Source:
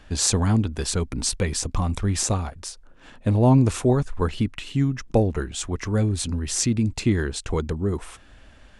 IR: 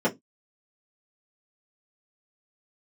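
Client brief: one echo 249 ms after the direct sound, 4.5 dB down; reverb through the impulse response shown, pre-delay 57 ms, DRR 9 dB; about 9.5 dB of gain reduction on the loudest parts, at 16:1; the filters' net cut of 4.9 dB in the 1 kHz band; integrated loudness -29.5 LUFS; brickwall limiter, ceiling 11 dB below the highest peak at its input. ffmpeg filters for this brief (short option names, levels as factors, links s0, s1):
-filter_complex "[0:a]equalizer=f=1000:t=o:g=-6.5,acompressor=threshold=0.0891:ratio=16,alimiter=limit=0.112:level=0:latency=1,aecho=1:1:249:0.596,asplit=2[s0][s1];[1:a]atrim=start_sample=2205,adelay=57[s2];[s1][s2]afir=irnorm=-1:irlink=0,volume=0.0708[s3];[s0][s3]amix=inputs=2:normalize=0,volume=0.75"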